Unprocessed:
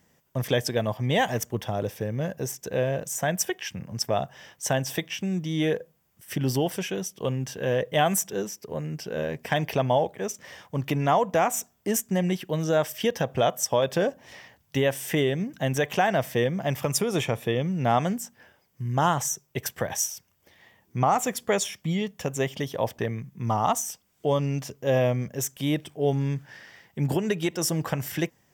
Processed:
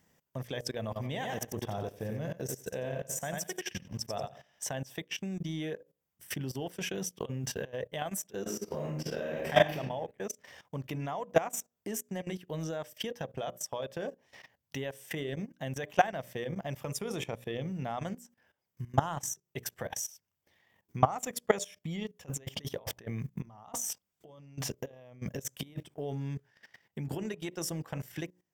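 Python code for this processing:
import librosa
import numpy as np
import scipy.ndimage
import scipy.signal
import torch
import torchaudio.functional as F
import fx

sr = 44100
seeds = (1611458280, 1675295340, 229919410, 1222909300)

y = fx.echo_feedback(x, sr, ms=90, feedback_pct=32, wet_db=-5.5, at=(0.81, 4.71))
y = fx.over_compress(y, sr, threshold_db=-32.0, ratio=-1.0, at=(6.71, 7.73), fade=0.02)
y = fx.reverb_throw(y, sr, start_s=8.4, length_s=1.36, rt60_s=0.82, drr_db=-4.5)
y = fx.over_compress(y, sr, threshold_db=-35.0, ratio=-1.0, at=(22.23, 25.81), fade=0.02)
y = fx.hum_notches(y, sr, base_hz=60, count=10)
y = fx.transient(y, sr, attack_db=5, sustain_db=-9)
y = fx.level_steps(y, sr, step_db=17)
y = y * librosa.db_to_amplitude(-1.5)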